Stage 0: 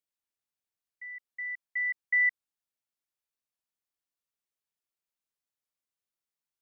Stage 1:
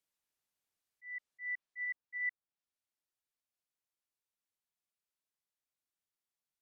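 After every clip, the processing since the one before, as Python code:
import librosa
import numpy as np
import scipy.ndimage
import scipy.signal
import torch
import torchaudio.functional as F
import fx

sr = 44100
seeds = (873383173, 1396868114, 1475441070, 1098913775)

y = fx.auto_swell(x, sr, attack_ms=190.0)
y = fx.env_lowpass_down(y, sr, base_hz=1700.0, full_db=-34.5)
y = fx.rider(y, sr, range_db=3, speed_s=0.5)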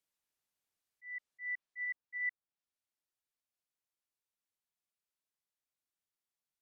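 y = x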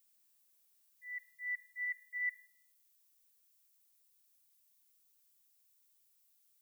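y = fx.dmg_noise_colour(x, sr, seeds[0], colour='violet', level_db=-73.0)
y = fx.room_shoebox(y, sr, seeds[1], volume_m3=2200.0, walls='furnished', distance_m=0.61)
y = F.gain(torch.from_numpy(y), 1.0).numpy()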